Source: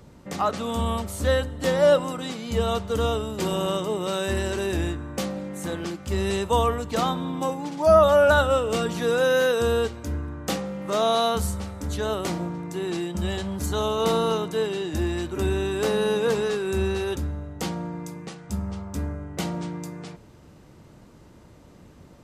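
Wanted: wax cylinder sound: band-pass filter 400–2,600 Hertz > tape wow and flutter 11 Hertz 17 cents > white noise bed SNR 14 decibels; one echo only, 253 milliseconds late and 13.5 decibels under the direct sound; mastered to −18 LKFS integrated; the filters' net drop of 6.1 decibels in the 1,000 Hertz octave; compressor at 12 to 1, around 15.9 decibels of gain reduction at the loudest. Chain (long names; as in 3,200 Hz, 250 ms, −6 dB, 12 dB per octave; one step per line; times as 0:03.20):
parametric band 1,000 Hz −8 dB
downward compressor 12 to 1, threshold −32 dBFS
band-pass filter 400–2,600 Hz
single-tap delay 253 ms −13.5 dB
tape wow and flutter 11 Hz 17 cents
white noise bed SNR 14 dB
level +22.5 dB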